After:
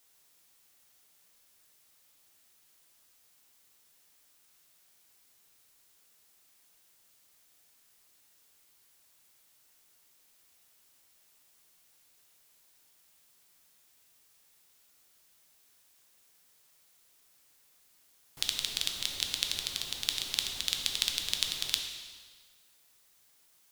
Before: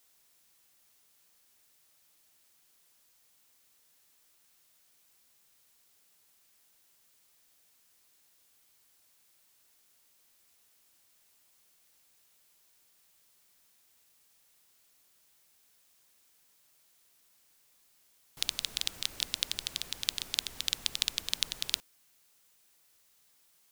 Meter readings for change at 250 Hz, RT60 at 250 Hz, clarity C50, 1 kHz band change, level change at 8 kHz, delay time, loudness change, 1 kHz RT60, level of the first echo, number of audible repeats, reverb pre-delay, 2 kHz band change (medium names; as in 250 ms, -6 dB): +1.5 dB, 1.6 s, 5.0 dB, +2.0 dB, +1.5 dB, no echo, +1.5 dB, 1.6 s, no echo, no echo, 4 ms, +1.5 dB